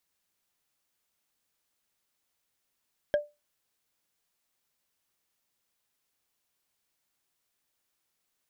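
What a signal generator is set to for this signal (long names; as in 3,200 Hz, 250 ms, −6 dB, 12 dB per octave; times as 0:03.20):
struck wood, lowest mode 590 Hz, decay 0.23 s, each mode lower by 9 dB, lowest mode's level −18 dB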